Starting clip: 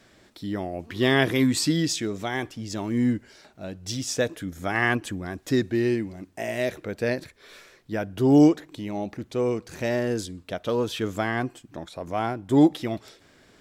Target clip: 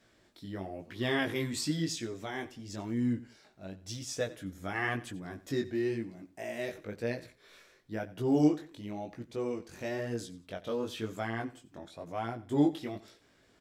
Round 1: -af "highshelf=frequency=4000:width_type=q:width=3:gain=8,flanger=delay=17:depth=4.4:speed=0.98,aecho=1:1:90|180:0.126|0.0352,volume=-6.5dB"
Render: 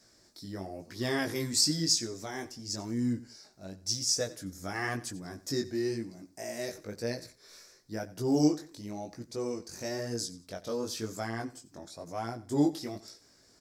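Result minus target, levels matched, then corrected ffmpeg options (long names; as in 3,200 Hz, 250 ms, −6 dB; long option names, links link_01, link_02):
8,000 Hz band +9.5 dB
-af "flanger=delay=17:depth=4.4:speed=0.98,aecho=1:1:90|180:0.126|0.0352,volume=-6.5dB"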